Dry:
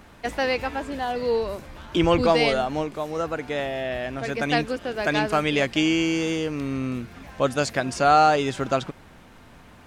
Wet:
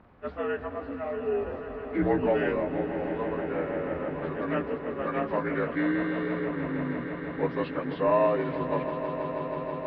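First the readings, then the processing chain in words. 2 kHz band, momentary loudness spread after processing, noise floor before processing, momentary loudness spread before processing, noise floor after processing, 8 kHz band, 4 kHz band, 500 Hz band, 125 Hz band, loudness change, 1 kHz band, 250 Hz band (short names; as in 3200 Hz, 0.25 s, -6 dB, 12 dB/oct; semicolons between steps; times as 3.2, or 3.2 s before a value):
-8.0 dB, 8 LU, -49 dBFS, 10 LU, -39 dBFS, under -40 dB, -20.5 dB, -3.5 dB, -5.0 dB, -6.0 dB, -9.0 dB, -4.0 dB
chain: inharmonic rescaling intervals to 83%; air absorption 450 m; swelling echo 0.161 s, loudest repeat 5, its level -13 dB; gain -4 dB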